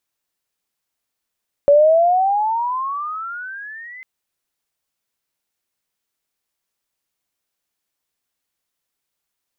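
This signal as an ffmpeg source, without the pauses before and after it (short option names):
-f lavfi -i "aevalsrc='pow(10,(-7-27*t/2.35)/20)*sin(2*PI*564*2.35/(22.5*log(2)/12)*(exp(22.5*log(2)/12*t/2.35)-1))':d=2.35:s=44100"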